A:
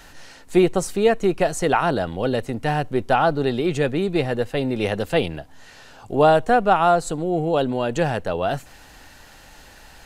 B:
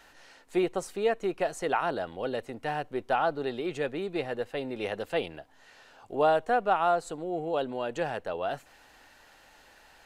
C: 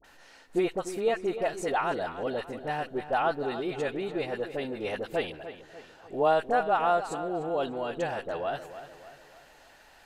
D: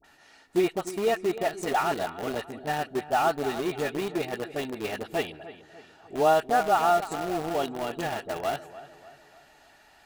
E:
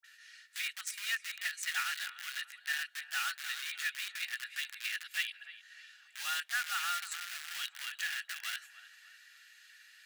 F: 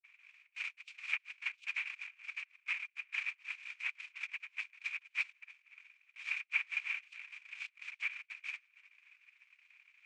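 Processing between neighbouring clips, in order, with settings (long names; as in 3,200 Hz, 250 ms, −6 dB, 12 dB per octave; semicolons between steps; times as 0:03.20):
bass and treble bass −11 dB, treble −5 dB; level −8 dB
all-pass dispersion highs, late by 44 ms, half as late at 1,000 Hz; on a send: feedback echo with a low-pass in the loop 297 ms, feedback 48%, low-pass 4,300 Hz, level −12 dB
notch comb filter 520 Hz; in parallel at −7 dB: bit reduction 5 bits
elliptic high-pass filter 1,600 Hz, stop band 80 dB; level +2 dB
cochlear-implant simulation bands 4; resonant band-pass 2,400 Hz, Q 12; transient designer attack +6 dB, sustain −9 dB; level +4.5 dB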